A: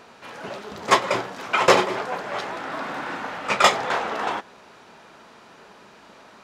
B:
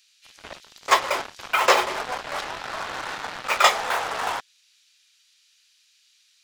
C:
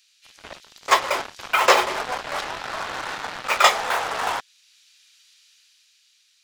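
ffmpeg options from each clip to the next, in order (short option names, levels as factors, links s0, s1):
-filter_complex "[0:a]highpass=580,acrossover=split=3100[s0][s1];[s0]acrusher=bits=4:mix=0:aa=0.5[s2];[s2][s1]amix=inputs=2:normalize=0"
-af "dynaudnorm=f=230:g=9:m=2.11"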